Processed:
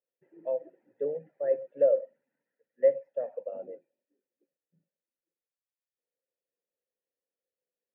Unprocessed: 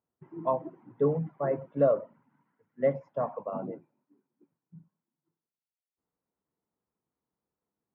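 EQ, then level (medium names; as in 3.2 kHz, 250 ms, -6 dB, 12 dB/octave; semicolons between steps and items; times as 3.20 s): vowel filter e; bass shelf 95 Hz -7 dB; +5.0 dB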